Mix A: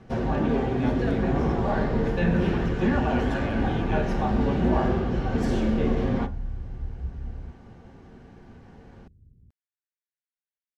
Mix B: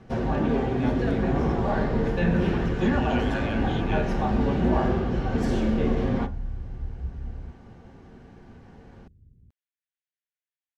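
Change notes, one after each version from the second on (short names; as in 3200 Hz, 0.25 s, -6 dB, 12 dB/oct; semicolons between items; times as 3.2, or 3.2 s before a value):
speech: add tilt +3.5 dB/oct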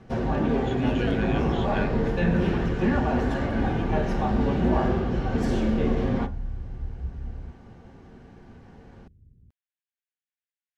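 speech: entry -2.15 s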